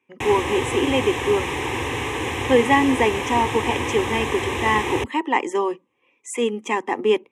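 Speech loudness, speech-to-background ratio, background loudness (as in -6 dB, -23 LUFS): -22.0 LUFS, 3.5 dB, -25.5 LUFS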